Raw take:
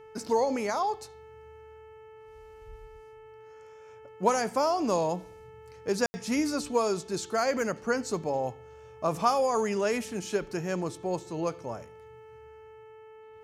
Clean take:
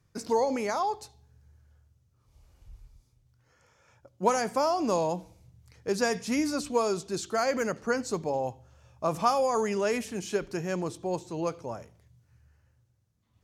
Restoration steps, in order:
hum removal 437.8 Hz, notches 7
ambience match 0:06.06–0:06.14

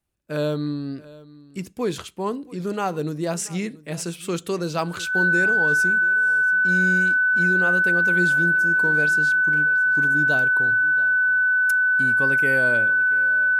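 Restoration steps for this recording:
notch filter 1,500 Hz, Q 30
echo removal 681 ms −20 dB

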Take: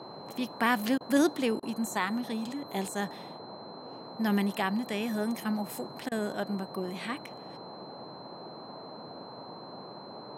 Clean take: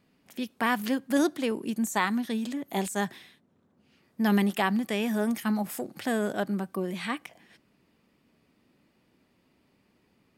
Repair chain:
notch filter 4,100 Hz, Q 30
repair the gap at 0:00.98/0:01.60/0:06.09, 25 ms
noise reduction from a noise print 23 dB
level 0 dB, from 0:01.65 +4 dB

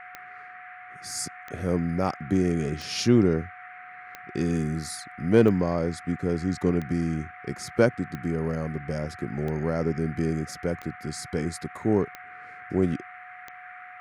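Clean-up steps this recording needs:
click removal
notch filter 730 Hz, Q 30
noise reduction from a noise print 27 dB

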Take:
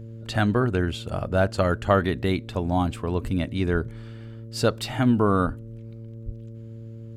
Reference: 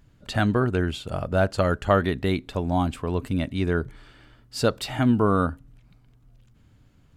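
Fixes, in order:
hum removal 113.1 Hz, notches 5
high-pass at the plosives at 0:03.23/0:03.72/0:05.45/0:06.25

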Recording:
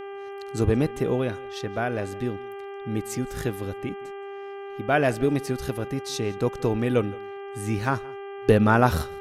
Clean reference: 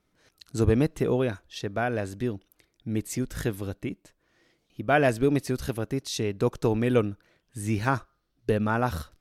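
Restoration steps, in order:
hum removal 397.3 Hz, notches 8
echo removal 171 ms −23 dB
level 0 dB, from 0:08.42 −7 dB

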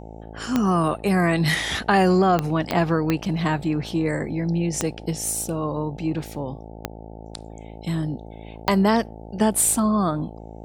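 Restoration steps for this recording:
click removal
hum removal 54.8 Hz, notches 16

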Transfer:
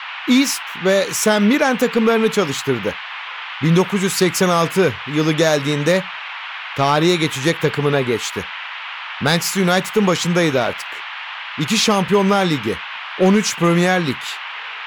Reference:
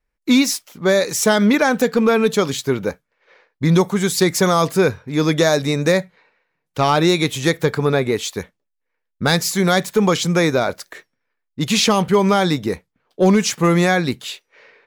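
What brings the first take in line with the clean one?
noise reduction from a noise print 30 dB

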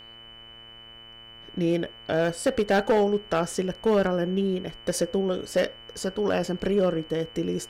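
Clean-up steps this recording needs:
clipped peaks rebuilt −15.5 dBFS
hum removal 115 Hz, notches 26
notch filter 3,000 Hz, Q 30

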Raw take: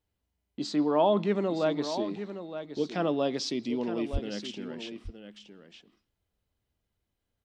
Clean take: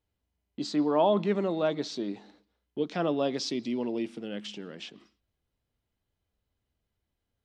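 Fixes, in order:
0:04.12–0:04.24: high-pass filter 140 Hz 24 dB per octave
echo removal 917 ms −10.5 dB

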